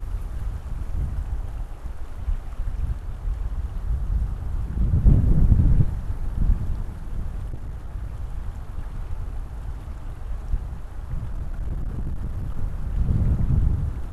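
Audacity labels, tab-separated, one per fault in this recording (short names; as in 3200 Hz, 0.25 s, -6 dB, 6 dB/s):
7.490000	7.900000	clipped -27 dBFS
11.330000	12.570000	clipped -23.5 dBFS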